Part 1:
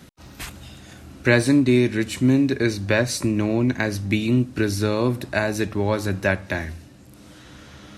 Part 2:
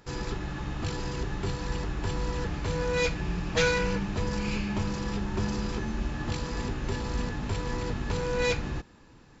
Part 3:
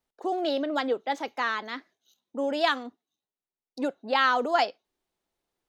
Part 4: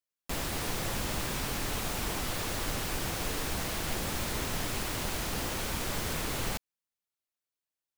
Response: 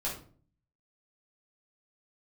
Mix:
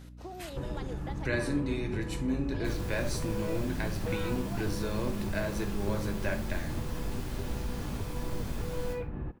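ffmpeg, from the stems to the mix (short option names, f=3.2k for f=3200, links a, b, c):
-filter_complex "[0:a]volume=-10dB,asplit=2[a][b];[b]volume=-11.5dB[c];[1:a]lowpass=f=3k:w=0.5412,lowpass=f=3k:w=1.3066,tiltshelf=f=1.3k:g=5.5,adelay=500,volume=-0.5dB[d];[2:a]acompressor=threshold=-28dB:ratio=6,volume=-9dB[e];[3:a]adelay=2350,volume=-12dB,asplit=2[f][g];[g]volume=-3.5dB[h];[d][f]amix=inputs=2:normalize=0,highshelf=f=2k:g=-8.5,acompressor=threshold=-33dB:ratio=6,volume=0dB[i];[a][e]amix=inputs=2:normalize=0,aeval=exprs='val(0)+0.00447*(sin(2*PI*60*n/s)+sin(2*PI*2*60*n/s)/2+sin(2*PI*3*60*n/s)/3+sin(2*PI*4*60*n/s)/4+sin(2*PI*5*60*n/s)/5)':c=same,acompressor=threshold=-41dB:ratio=2,volume=0dB[j];[4:a]atrim=start_sample=2205[k];[c][h]amix=inputs=2:normalize=0[l];[l][k]afir=irnorm=-1:irlink=0[m];[i][j][m]amix=inputs=3:normalize=0"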